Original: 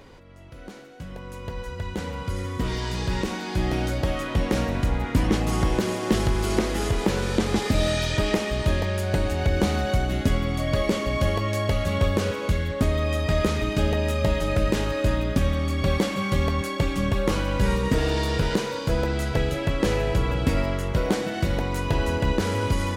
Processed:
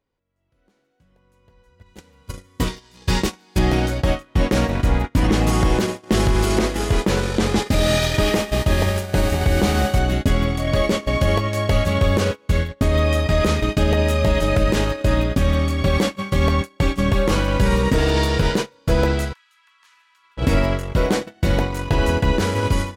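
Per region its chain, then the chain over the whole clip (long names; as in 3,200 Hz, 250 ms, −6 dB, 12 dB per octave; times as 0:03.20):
0:01.86–0:03.59: high-shelf EQ 3,900 Hz +8.5 dB + mains-hum notches 60/120 Hz + double-tracking delay 28 ms −10.5 dB
0:07.67–0:09.98: hum with harmonics 400 Hz, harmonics 37, −40 dBFS −3 dB per octave + single-tap delay 201 ms −16 dB
0:19.33–0:20.37: Butterworth high-pass 940 Hz 96 dB per octave + highs frequency-modulated by the lows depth 0.12 ms
whole clip: noise gate −24 dBFS, range −31 dB; automatic gain control gain up to 9 dB; brickwall limiter −8 dBFS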